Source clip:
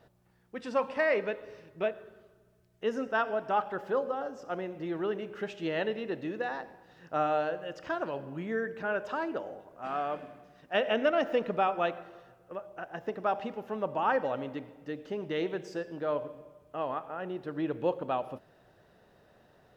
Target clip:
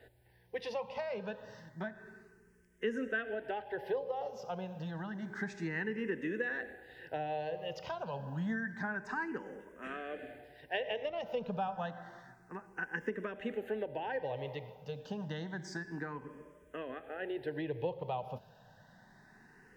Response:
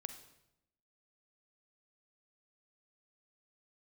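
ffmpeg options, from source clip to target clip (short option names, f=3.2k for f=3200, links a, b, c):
-filter_complex "[0:a]acrossover=split=190[a][b];[b]acompressor=threshold=-36dB:ratio=6[c];[a][c]amix=inputs=2:normalize=0,superequalizer=6b=0.631:8b=0.631:10b=0.501:11b=1.78,asplit=2[d][e];[e]afreqshift=0.29[f];[d][f]amix=inputs=2:normalize=1,volume=5dB"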